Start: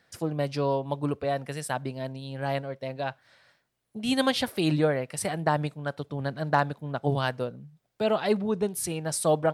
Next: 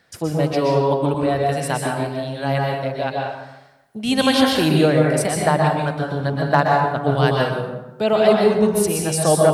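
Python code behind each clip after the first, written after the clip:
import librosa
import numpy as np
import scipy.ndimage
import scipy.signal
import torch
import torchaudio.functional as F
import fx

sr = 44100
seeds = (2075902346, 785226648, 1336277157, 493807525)

y = fx.rev_plate(x, sr, seeds[0], rt60_s=0.98, hf_ratio=0.65, predelay_ms=110, drr_db=-1.0)
y = y * librosa.db_to_amplitude(6.0)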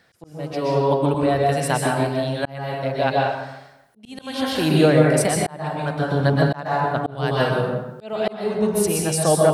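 y = fx.auto_swell(x, sr, attack_ms=694.0)
y = fx.rider(y, sr, range_db=5, speed_s=2.0)
y = y * librosa.db_to_amplitude(1.0)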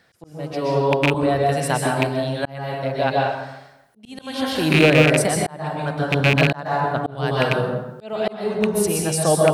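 y = fx.rattle_buzz(x, sr, strikes_db=-18.0, level_db=-6.0)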